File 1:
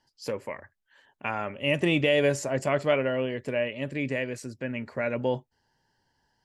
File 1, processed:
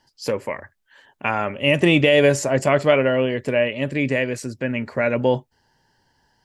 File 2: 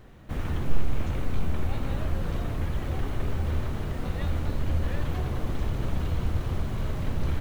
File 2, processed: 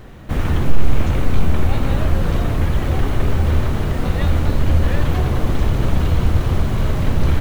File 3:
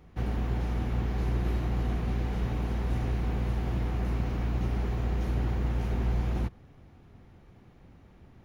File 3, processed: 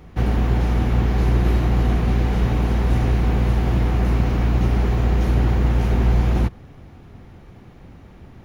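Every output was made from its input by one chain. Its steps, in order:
loudness maximiser +12 dB; normalise loudness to -20 LUFS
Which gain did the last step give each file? -3.5 dB, -0.5 dB, -1.0 dB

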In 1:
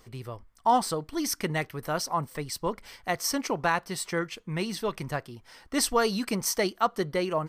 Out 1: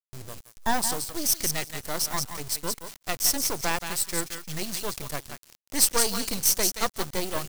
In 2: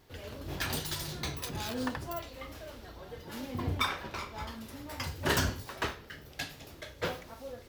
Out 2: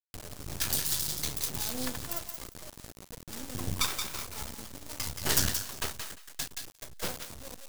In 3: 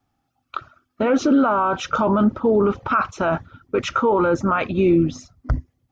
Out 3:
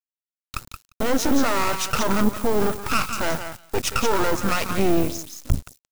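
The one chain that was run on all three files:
send-on-delta sampling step -38.5 dBFS; thinning echo 175 ms, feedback 15%, high-pass 1.1 kHz, level -5.5 dB; half-wave rectifier; tone controls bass +3 dB, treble +14 dB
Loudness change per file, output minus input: +3.0 LU, +3.5 LU, -3.5 LU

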